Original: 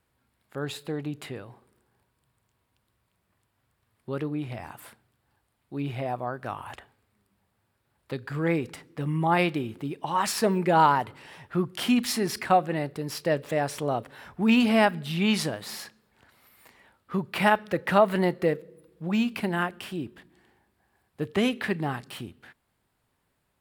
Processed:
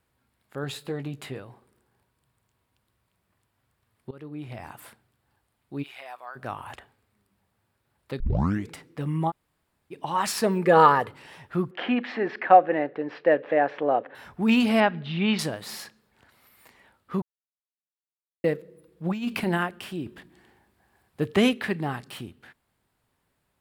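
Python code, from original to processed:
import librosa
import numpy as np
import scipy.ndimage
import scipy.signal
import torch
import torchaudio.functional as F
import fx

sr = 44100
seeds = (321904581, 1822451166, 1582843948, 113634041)

y = fx.doubler(x, sr, ms=15.0, db=-8.0, at=(0.62, 1.4))
y = fx.highpass(y, sr, hz=1300.0, slope=12, at=(5.82, 6.35), fade=0.02)
y = fx.small_body(y, sr, hz=(480.0, 1200.0, 1700.0), ring_ms=45, db=14, at=(10.65, 11.09))
y = fx.cabinet(y, sr, low_hz=290.0, low_slope=12, high_hz=2800.0, hz=(300.0, 510.0, 750.0, 1700.0), db=(6, 8, 6, 7), at=(11.71, 14.15))
y = fx.lowpass(y, sr, hz=3800.0, slope=24, at=(14.8, 15.39))
y = fx.over_compress(y, sr, threshold_db=-27.0, ratio=-0.5, at=(19.04, 19.56), fade=0.02)
y = fx.edit(y, sr, fx.fade_in_from(start_s=4.11, length_s=0.57, floor_db=-20.5),
    fx.tape_start(start_s=8.2, length_s=0.51),
    fx.room_tone_fill(start_s=9.3, length_s=0.62, crossfade_s=0.04),
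    fx.silence(start_s=17.22, length_s=1.22),
    fx.clip_gain(start_s=20.06, length_s=1.47, db=4.0), tone=tone)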